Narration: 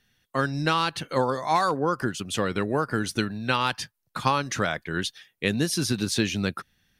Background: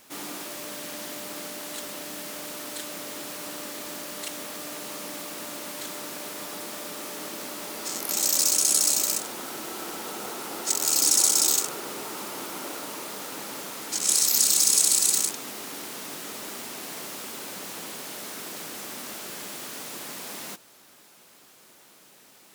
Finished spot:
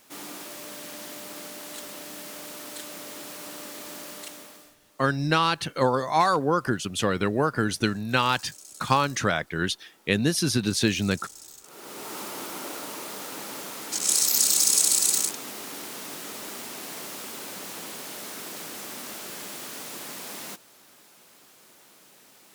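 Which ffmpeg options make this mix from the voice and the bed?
-filter_complex "[0:a]adelay=4650,volume=1.5dB[a];[1:a]volume=21.5dB,afade=t=out:st=4.09:d=0.67:silence=0.0794328,afade=t=in:st=11.62:d=0.54:silence=0.0595662[b];[a][b]amix=inputs=2:normalize=0"

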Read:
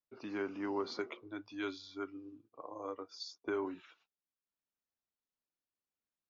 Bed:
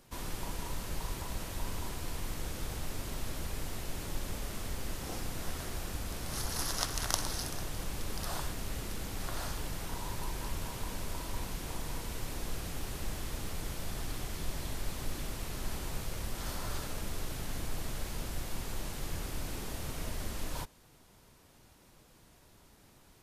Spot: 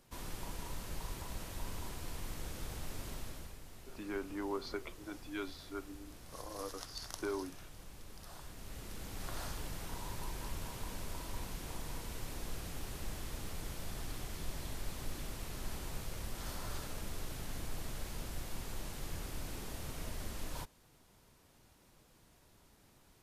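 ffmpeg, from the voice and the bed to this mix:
-filter_complex "[0:a]adelay=3750,volume=-2dB[a];[1:a]volume=5dB,afade=t=out:st=3.1:d=0.49:silence=0.334965,afade=t=in:st=8.38:d=0.93:silence=0.316228[b];[a][b]amix=inputs=2:normalize=0"

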